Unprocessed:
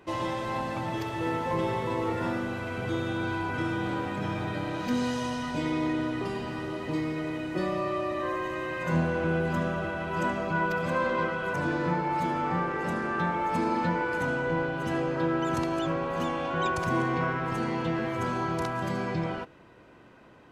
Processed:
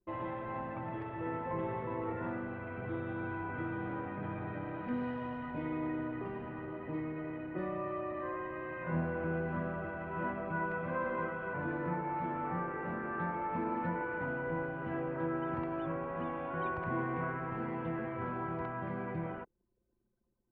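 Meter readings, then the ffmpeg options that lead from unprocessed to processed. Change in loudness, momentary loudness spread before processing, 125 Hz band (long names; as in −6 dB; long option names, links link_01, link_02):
−8.0 dB, 5 LU, −8.0 dB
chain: -af "anlmdn=0.398,lowpass=frequency=2200:width=0.5412,lowpass=frequency=2200:width=1.3066,volume=-8dB"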